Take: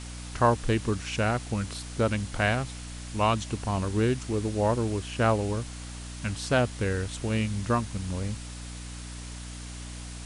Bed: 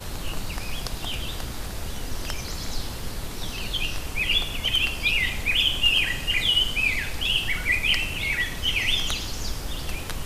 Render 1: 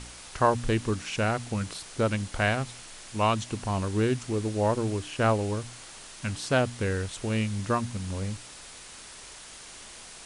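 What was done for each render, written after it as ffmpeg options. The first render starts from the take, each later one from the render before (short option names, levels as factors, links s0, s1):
-af "bandreject=f=60:t=h:w=4,bandreject=f=120:t=h:w=4,bandreject=f=180:t=h:w=4,bandreject=f=240:t=h:w=4,bandreject=f=300:t=h:w=4"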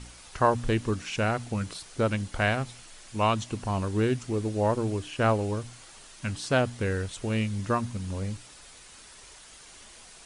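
-af "afftdn=nr=6:nf=-46"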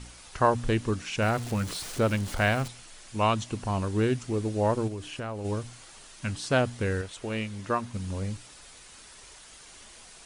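-filter_complex "[0:a]asettb=1/sr,asplit=3[s0][s1][s2];[s0]atrim=end=1.224[s3];[s1]atrim=start=1.22:end=2.68,asetpts=PTS-STARTPTS,afade=t=in:d=0.004:c=qsin,afade=t=out:st=1.456:d=0.004:c=qsin,aeval=exprs='val(0)+0.5*0.0168*sgn(val(0))':c=same[s4];[s2]atrim=start=2.676[s5];[s3][s4]acrossfade=d=0.004:c1=hsin:c2=qsin[s6];[s6][s5]acrossfade=d=0.004:c1=qsin:c2=hsin,asplit=3[s7][s8][s9];[s7]afade=t=out:st=4.87:d=0.02[s10];[s8]acompressor=threshold=0.0224:ratio=4:attack=3.2:release=140:knee=1:detection=peak,afade=t=in:st=4.87:d=0.02,afade=t=out:st=5.44:d=0.02[s11];[s9]afade=t=in:st=5.44:d=0.02[s12];[s10][s11][s12]amix=inputs=3:normalize=0,asettb=1/sr,asplit=3[s13][s14][s15];[s13]atrim=end=7.014[s16];[s14]atrim=start=7.01:end=7.94,asetpts=PTS-STARTPTS,afade=t=in:d=0.004:c=qsin,afade=t=out:st=0.926:d=0.004:c=qsin,bass=f=250:g=-8,treble=f=4000:g=-4[s17];[s15]atrim=start=7.936[s18];[s16][s17]acrossfade=d=0.004:c1=hsin:c2=qsin[s19];[s19][s18]acrossfade=d=0.004:c1=qsin:c2=hsin"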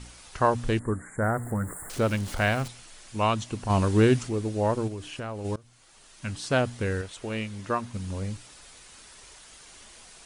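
-filter_complex "[0:a]asettb=1/sr,asplit=3[s0][s1][s2];[s0]atrim=end=0.794[s3];[s1]atrim=start=0.79:end=1.9,asetpts=PTS-STARTPTS,afade=t=in:d=0.004:c=qsin,afade=t=out:st=1.106:d=0.004:c=qsin,asuperstop=centerf=3900:order=20:qfactor=0.73[s4];[s2]atrim=start=1.896[s5];[s3][s4]acrossfade=d=0.004:c1=hsin:c2=qsin[s6];[s6][s5]acrossfade=d=0.004:c1=qsin:c2=hsin,asplit=3[s7][s8][s9];[s7]afade=t=out:st=3.69:d=0.02[s10];[s8]acontrast=51,afade=t=in:st=3.69:d=0.02,afade=t=out:st=4.27:d=0.02[s11];[s9]afade=t=in:st=4.27:d=0.02[s12];[s10][s11][s12]amix=inputs=3:normalize=0,asplit=2[s13][s14];[s13]atrim=end=5.56,asetpts=PTS-STARTPTS,afade=t=out:st=5.556:d=0.004:c=hsin:silence=0.0707946[s15];[s14]atrim=start=5.56,asetpts=PTS-STARTPTS,afade=t=in:d=0.89:silence=0.0707946[s16];[s15][s16]concat=n=2:v=0:a=1"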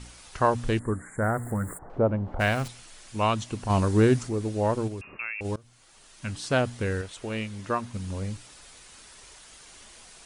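-filter_complex "[0:a]asplit=3[s0][s1][s2];[s0]afade=t=out:st=1.77:d=0.02[s3];[s1]lowpass=f=790:t=q:w=1.6,afade=t=in:st=1.77:d=0.02,afade=t=out:st=2.39:d=0.02[s4];[s2]afade=t=in:st=2.39:d=0.02[s5];[s3][s4][s5]amix=inputs=3:normalize=0,asettb=1/sr,asplit=3[s6][s7][s8];[s6]atrim=end=3.804[s9];[s7]atrim=start=3.8:end=4.41,asetpts=PTS-STARTPTS,afade=t=in:d=0.004:c=qsin,afade=t=out:st=0.606:d=0.004:c=qsin,equalizer=f=2900:t=o:w=0.77:g=-5.5[s10];[s8]atrim=start=4.406[s11];[s9][s10]acrossfade=d=0.004:c1=hsin:c2=qsin[s12];[s12][s11]acrossfade=d=0.004:c1=qsin:c2=hsin,asettb=1/sr,asplit=3[s13][s14][s15];[s13]atrim=end=5.014[s16];[s14]atrim=start=5.01:end=5.41,asetpts=PTS-STARTPTS,afade=t=in:d=0.004:c=qsin,afade=t=out:st=0.396:d=0.004:c=qsin,lowpass=f=2400:t=q:w=0.5098,lowpass=f=2400:t=q:w=0.6013,lowpass=f=2400:t=q:w=0.9,lowpass=f=2400:t=q:w=2.563,afreqshift=-2800[s17];[s15]atrim=start=5.406[s18];[s16][s17]acrossfade=d=0.004:c1=hsin:c2=qsin[s19];[s19][s18]acrossfade=d=0.004:c1=qsin:c2=hsin"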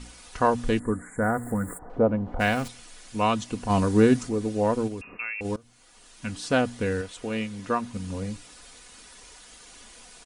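-af "equalizer=f=320:w=1.1:g=2.5,aecho=1:1:4.1:0.43"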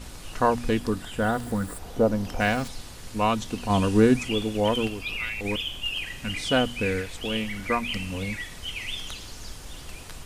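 -filter_complex "[1:a]volume=0.316[s0];[0:a][s0]amix=inputs=2:normalize=0"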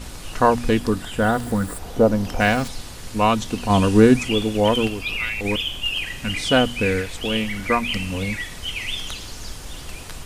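-af "volume=1.88"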